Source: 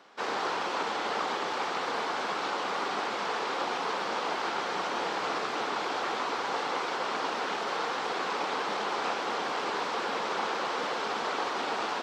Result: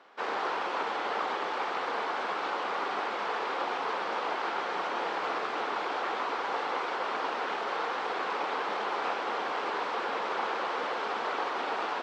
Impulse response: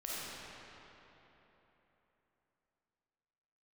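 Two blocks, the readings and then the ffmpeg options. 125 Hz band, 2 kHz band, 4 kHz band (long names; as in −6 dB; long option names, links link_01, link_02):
can't be measured, −0.5 dB, −4.5 dB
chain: -af "bass=frequency=250:gain=-9,treble=frequency=4000:gain=-11"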